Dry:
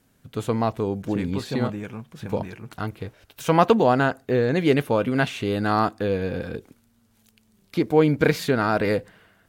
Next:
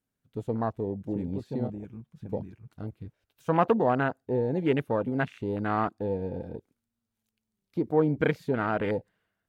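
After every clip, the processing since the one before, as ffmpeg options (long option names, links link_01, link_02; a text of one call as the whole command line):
ffmpeg -i in.wav -af "afwtdn=0.0501,volume=-6dB" out.wav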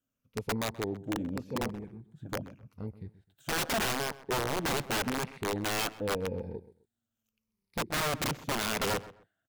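ffmpeg -i in.wav -filter_complex "[0:a]afftfilt=real='re*pow(10,10/40*sin(2*PI*(0.86*log(max(b,1)*sr/1024/100)/log(2)-(-0.84)*(pts-256)/sr)))':imag='im*pow(10,10/40*sin(2*PI*(0.86*log(max(b,1)*sr/1024/100)/log(2)-(-0.84)*(pts-256)/sr)))':win_size=1024:overlap=0.75,aeval=exprs='(mod(11.9*val(0)+1,2)-1)/11.9':channel_layout=same,asplit=2[link_01][link_02];[link_02]adelay=129,lowpass=frequency=2400:poles=1,volume=-16.5dB,asplit=2[link_03][link_04];[link_04]adelay=129,lowpass=frequency=2400:poles=1,volume=0.25[link_05];[link_01][link_03][link_05]amix=inputs=3:normalize=0,volume=-3.5dB" out.wav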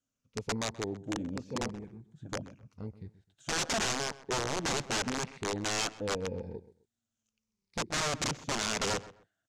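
ffmpeg -i in.wav -af "lowpass=frequency=6700:width_type=q:width=2.4,volume=-2dB" out.wav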